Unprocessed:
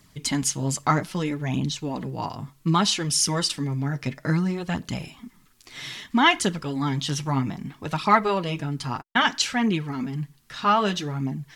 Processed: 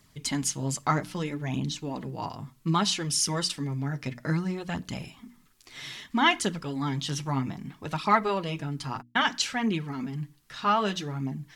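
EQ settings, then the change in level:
mains-hum notches 60/120/180/240/300 Hz
−4.0 dB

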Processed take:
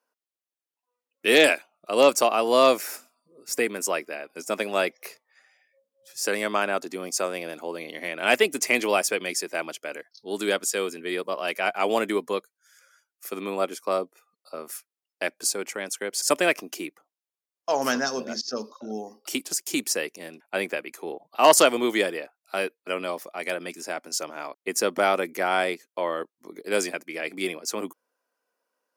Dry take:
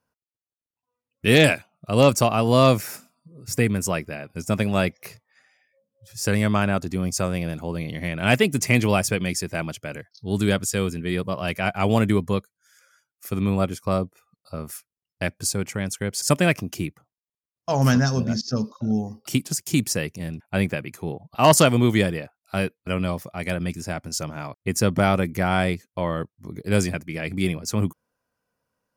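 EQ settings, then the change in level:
high-pass filter 320 Hz 24 dB per octave
0.0 dB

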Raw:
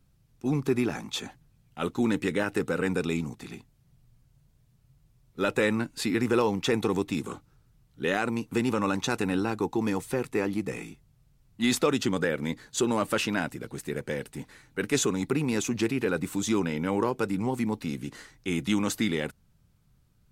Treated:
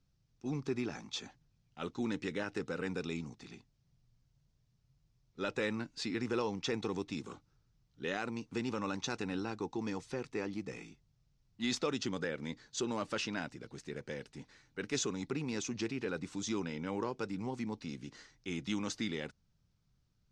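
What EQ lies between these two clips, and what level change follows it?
transistor ladder low-pass 6,600 Hz, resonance 45%
−1.5 dB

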